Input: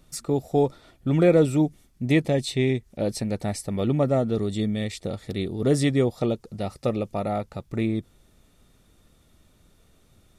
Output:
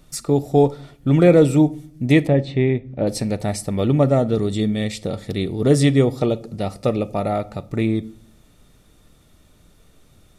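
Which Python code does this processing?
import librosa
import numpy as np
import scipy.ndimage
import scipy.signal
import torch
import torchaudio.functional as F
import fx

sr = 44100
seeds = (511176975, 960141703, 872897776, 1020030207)

y = fx.lowpass(x, sr, hz=2000.0, slope=12, at=(2.27, 3.07))
y = fx.room_shoebox(y, sr, seeds[0], volume_m3=720.0, walls='furnished', distance_m=0.42)
y = y * librosa.db_to_amplitude(5.0)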